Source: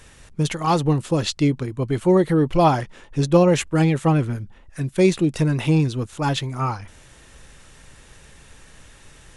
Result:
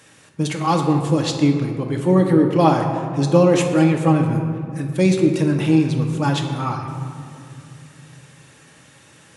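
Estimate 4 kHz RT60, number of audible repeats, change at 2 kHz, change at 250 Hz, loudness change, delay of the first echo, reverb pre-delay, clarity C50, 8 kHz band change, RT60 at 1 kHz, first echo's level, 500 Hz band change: 1.1 s, no echo audible, +1.0 dB, +3.5 dB, +2.0 dB, no echo audible, 4 ms, 5.5 dB, +0.5 dB, 2.3 s, no echo audible, +1.5 dB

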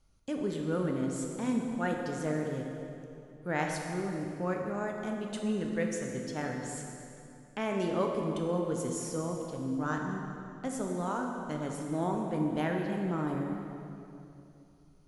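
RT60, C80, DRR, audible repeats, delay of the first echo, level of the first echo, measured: 2.8 s, 3.5 dB, 1.0 dB, no echo audible, no echo audible, no echo audible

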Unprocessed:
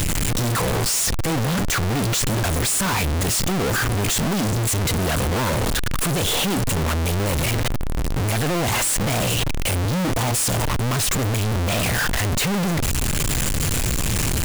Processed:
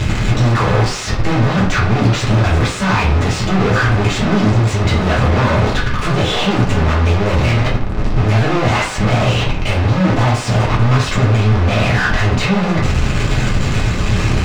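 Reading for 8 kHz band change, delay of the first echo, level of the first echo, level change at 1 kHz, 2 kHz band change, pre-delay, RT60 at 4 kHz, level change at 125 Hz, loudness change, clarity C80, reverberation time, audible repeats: −8.0 dB, no echo audible, no echo audible, +7.5 dB, +7.0 dB, 3 ms, 0.35 s, +9.0 dB, +6.0 dB, 11.0 dB, 0.50 s, no echo audible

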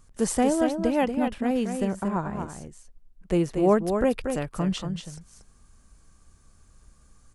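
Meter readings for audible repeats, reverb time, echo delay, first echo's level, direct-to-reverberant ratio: 1, no reverb audible, 234 ms, −6.5 dB, no reverb audible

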